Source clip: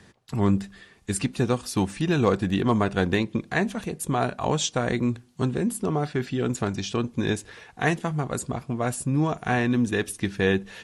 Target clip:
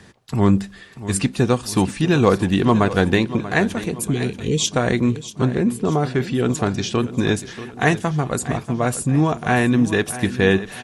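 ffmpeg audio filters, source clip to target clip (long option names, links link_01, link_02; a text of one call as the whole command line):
ffmpeg -i in.wav -filter_complex "[0:a]asplit=3[link_01][link_02][link_03];[link_01]afade=type=out:start_time=3.99:duration=0.02[link_04];[link_02]asuperstop=centerf=960:order=20:qfactor=0.66,afade=type=in:start_time=3.99:duration=0.02,afade=type=out:start_time=4.66:duration=0.02[link_05];[link_03]afade=type=in:start_time=4.66:duration=0.02[link_06];[link_04][link_05][link_06]amix=inputs=3:normalize=0,asettb=1/sr,asplit=3[link_07][link_08][link_09];[link_07]atrim=end=5.264[link_10];[link_08]atrim=start=5.26:end=5.95,asetpts=PTS-STARTPTS,afade=type=in:duration=0.004:curve=qsin,afade=type=out:start_time=0.686:duration=0.004:curve=qsin,highshelf=frequency=5600:gain=-11[link_11];[link_09]atrim=start=5.946[link_12];[link_10][link_11]acrossfade=duration=0.004:curve1=hsin:curve2=qsin[link_13];[link_13][link_12]acrossfade=duration=0.004:curve1=qsin:curve2=hsin,aecho=1:1:637|1274|1911|2548:0.2|0.0918|0.0422|0.0194,volume=6dB" out.wav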